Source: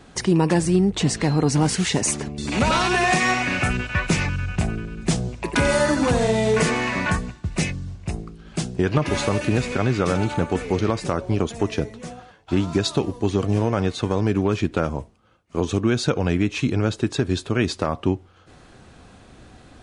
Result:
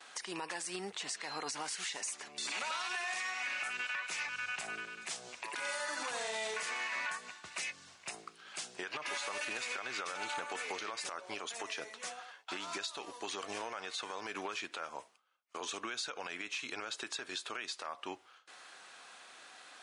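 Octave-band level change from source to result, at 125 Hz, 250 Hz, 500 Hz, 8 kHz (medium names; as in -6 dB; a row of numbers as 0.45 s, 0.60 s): under -40 dB, -30.0 dB, -22.5 dB, -11.5 dB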